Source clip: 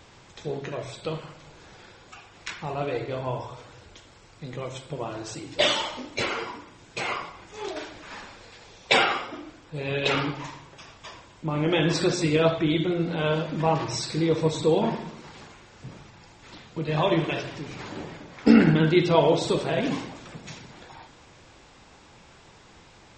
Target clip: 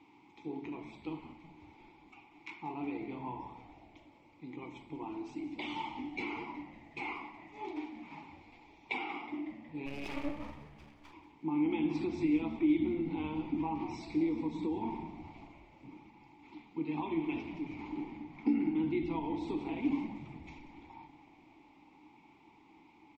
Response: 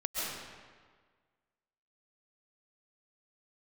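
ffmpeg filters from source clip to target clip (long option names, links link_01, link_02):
-filter_complex "[0:a]acompressor=threshold=-24dB:ratio=6,asplit=3[link_01][link_02][link_03];[link_01]bandpass=frequency=300:width_type=q:width=8,volume=0dB[link_04];[link_02]bandpass=frequency=870:width_type=q:width=8,volume=-6dB[link_05];[link_03]bandpass=frequency=2240:width_type=q:width=8,volume=-9dB[link_06];[link_04][link_05][link_06]amix=inputs=3:normalize=0,asplit=3[link_07][link_08][link_09];[link_07]afade=type=out:start_time=9.85:duration=0.02[link_10];[link_08]aeval=exprs='max(val(0),0)':channel_layout=same,afade=type=in:start_time=9.85:duration=0.02,afade=type=out:start_time=11.12:duration=0.02[link_11];[link_09]afade=type=in:start_time=11.12:duration=0.02[link_12];[link_10][link_11][link_12]amix=inputs=3:normalize=0,asplit=7[link_13][link_14][link_15][link_16][link_17][link_18][link_19];[link_14]adelay=184,afreqshift=-73,volume=-15dB[link_20];[link_15]adelay=368,afreqshift=-146,volume=-19.4dB[link_21];[link_16]adelay=552,afreqshift=-219,volume=-23.9dB[link_22];[link_17]adelay=736,afreqshift=-292,volume=-28.3dB[link_23];[link_18]adelay=920,afreqshift=-365,volume=-32.7dB[link_24];[link_19]adelay=1104,afreqshift=-438,volume=-37.2dB[link_25];[link_13][link_20][link_21][link_22][link_23][link_24][link_25]amix=inputs=7:normalize=0,volume=4dB"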